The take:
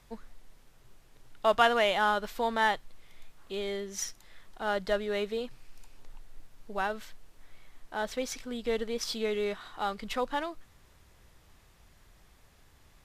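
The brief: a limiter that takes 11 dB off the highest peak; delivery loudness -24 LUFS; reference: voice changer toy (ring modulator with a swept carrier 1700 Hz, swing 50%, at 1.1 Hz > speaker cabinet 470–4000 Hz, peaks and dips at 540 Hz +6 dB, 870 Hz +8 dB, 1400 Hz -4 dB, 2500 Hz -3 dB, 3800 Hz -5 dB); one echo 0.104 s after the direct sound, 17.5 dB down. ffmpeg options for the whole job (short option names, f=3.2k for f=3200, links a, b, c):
-af "alimiter=limit=-21.5dB:level=0:latency=1,aecho=1:1:104:0.133,aeval=exprs='val(0)*sin(2*PI*1700*n/s+1700*0.5/1.1*sin(2*PI*1.1*n/s))':c=same,highpass=470,equalizer=f=540:t=q:w=4:g=6,equalizer=f=870:t=q:w=4:g=8,equalizer=f=1.4k:t=q:w=4:g=-4,equalizer=f=2.5k:t=q:w=4:g=-3,equalizer=f=3.8k:t=q:w=4:g=-5,lowpass=f=4k:w=0.5412,lowpass=f=4k:w=1.3066,volume=13.5dB"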